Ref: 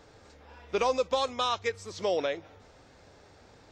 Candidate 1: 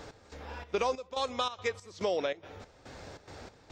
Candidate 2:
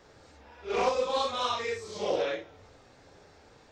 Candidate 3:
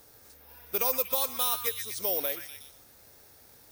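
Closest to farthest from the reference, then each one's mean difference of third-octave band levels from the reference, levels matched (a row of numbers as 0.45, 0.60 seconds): 2, 1, 3; 3.0, 5.5, 9.0 decibels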